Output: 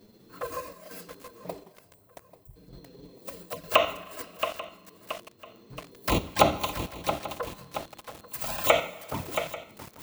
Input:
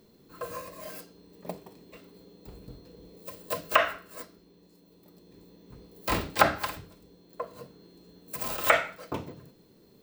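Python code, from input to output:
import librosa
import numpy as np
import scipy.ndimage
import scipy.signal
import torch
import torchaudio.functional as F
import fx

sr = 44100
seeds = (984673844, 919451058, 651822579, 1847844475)

p1 = fx.ellip_bandstop(x, sr, low_hz=110.0, high_hz=8700.0, order=3, stop_db=40, at=(1.72, 2.56))
p2 = fx.peak_eq(p1, sr, hz=460.0, db=-11.5, octaves=1.6, at=(7.47, 8.48))
p3 = fx.level_steps(p2, sr, step_db=10)
p4 = p2 + F.gain(torch.from_numpy(p3), 2.5).numpy()
p5 = fx.env_flanger(p4, sr, rest_ms=10.7, full_db=-21.5)
p6 = fx.chopper(p5, sr, hz=1.1, depth_pct=60, duty_pct=80)
p7 = p6 + fx.echo_feedback(p6, sr, ms=839, feedback_pct=33, wet_db=-18, dry=0)
p8 = fx.rev_schroeder(p7, sr, rt60_s=2.3, comb_ms=30, drr_db=17.5)
y = fx.echo_crushed(p8, sr, ms=675, feedback_pct=55, bits=6, wet_db=-8)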